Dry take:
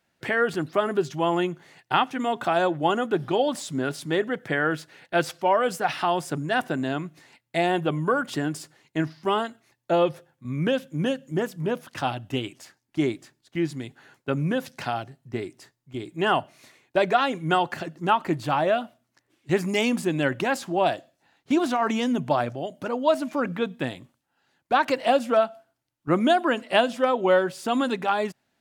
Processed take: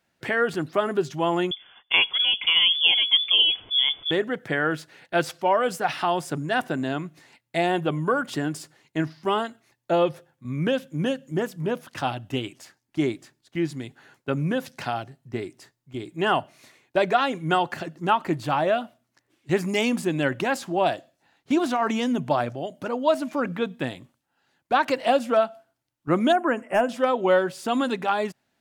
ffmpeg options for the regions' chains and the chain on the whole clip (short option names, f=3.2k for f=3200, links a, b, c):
-filter_complex "[0:a]asettb=1/sr,asplit=3[a][b][c];[a]atrim=end=1.514[d];[b]atrim=start=1.51:end=4.11,asetpts=PTS-STARTPTS,afade=t=in:d=0.004:c=qsin,afade=t=out:st=2.596:d=0.004:c=qsin,lowshelf=f=440:g=7.5,bandreject=f=1.8k:w=7.7,lowpass=f=3.1k:t=q:w=0.5098,lowpass=f=3.1k:t=q:w=0.6013,lowpass=f=3.1k:t=q:w=0.9,lowpass=f=3.1k:t=q:w=2.563,afreqshift=-3600[e];[c]atrim=start=4.106[f];[d][e]acrossfade=d=0.004:c1=hsin:c2=qsin[g];[g][f]acrossfade=d=0.004:c1=qsin:c2=hsin,asettb=1/sr,asplit=3[h][i][j];[h]atrim=end=26.324[k];[i]atrim=start=26.32:end=26.89,asetpts=PTS-STARTPTS,afade=t=in:d=0.004:c=qsin,afade=t=out:st=0.566:d=0.004:c=qsin,highshelf=f=11k:g=-9.5,asoftclip=type=hard:threshold=-13dB,asuperstop=centerf=4000:order=4:qfactor=0.9[l];[j]atrim=start=26.886[m];[k][l]acrossfade=d=0.004:c1=hsin:c2=qsin[n];[n][m]acrossfade=d=0.004:c1=qsin:c2=hsin"